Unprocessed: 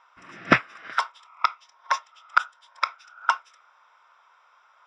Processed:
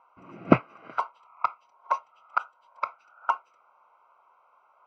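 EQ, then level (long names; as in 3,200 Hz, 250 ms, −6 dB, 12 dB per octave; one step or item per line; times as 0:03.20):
moving average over 25 samples
high-pass filter 73 Hz
+4.5 dB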